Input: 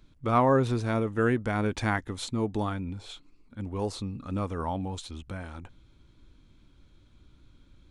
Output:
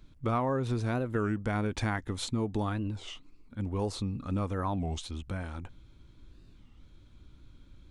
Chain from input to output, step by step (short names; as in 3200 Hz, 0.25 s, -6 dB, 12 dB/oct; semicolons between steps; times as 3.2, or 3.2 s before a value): low shelf 170 Hz +3.5 dB; compressor 6:1, threshold -26 dBFS, peak gain reduction 9 dB; record warp 33 1/3 rpm, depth 250 cents